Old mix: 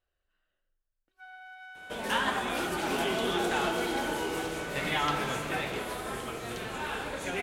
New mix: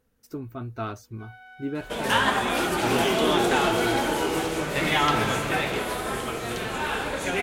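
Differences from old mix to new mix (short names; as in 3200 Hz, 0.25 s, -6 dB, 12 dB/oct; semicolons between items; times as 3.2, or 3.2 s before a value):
speech: unmuted; second sound +7.0 dB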